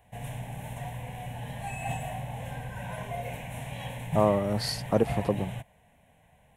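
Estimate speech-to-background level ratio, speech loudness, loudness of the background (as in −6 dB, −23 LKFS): 9.0 dB, −28.0 LKFS, −37.0 LKFS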